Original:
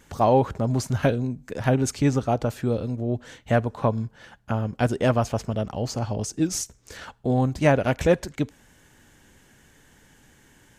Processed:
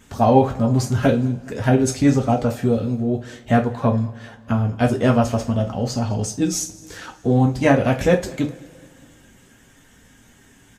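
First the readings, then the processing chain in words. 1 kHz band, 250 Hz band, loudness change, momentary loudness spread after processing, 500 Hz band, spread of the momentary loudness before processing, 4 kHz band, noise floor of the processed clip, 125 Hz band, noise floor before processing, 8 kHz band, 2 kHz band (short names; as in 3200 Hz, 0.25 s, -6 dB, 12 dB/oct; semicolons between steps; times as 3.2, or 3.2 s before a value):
+4.0 dB, +6.5 dB, +5.0 dB, 10 LU, +3.5 dB, 11 LU, +3.5 dB, -52 dBFS, +4.5 dB, -57 dBFS, +4.0 dB, +3.5 dB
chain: bin magnitudes rounded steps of 15 dB; bell 200 Hz +3 dB 0.72 oct; on a send: feedback echo 0.209 s, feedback 50%, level -23 dB; on the sum: two-slope reverb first 0.27 s, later 2.7 s, from -28 dB, DRR 1.5 dB; gain +2 dB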